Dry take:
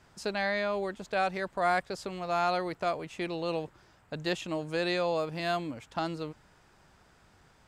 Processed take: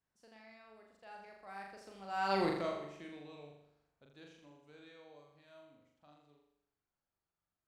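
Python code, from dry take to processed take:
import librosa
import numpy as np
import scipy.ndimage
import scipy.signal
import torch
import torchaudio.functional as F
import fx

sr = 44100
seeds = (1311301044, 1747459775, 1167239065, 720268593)

p1 = fx.doppler_pass(x, sr, speed_mps=31, closest_m=1.9, pass_at_s=2.42)
p2 = p1 + fx.room_flutter(p1, sr, wall_m=7.0, rt60_s=0.78, dry=0)
y = F.gain(torch.from_numpy(p2), 1.0).numpy()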